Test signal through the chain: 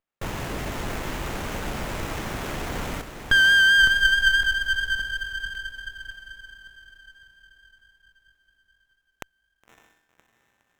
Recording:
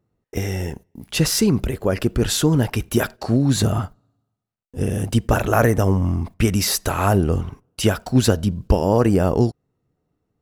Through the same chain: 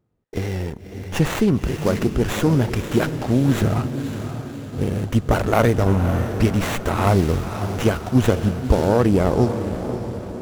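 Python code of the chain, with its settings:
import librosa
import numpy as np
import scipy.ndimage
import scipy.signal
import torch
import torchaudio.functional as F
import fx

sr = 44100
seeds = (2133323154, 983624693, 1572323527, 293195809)

y = fx.vibrato(x, sr, rate_hz=4.6, depth_cents=27.0)
y = fx.echo_diffused(y, sr, ms=560, feedback_pct=51, wet_db=-9.0)
y = fx.running_max(y, sr, window=9)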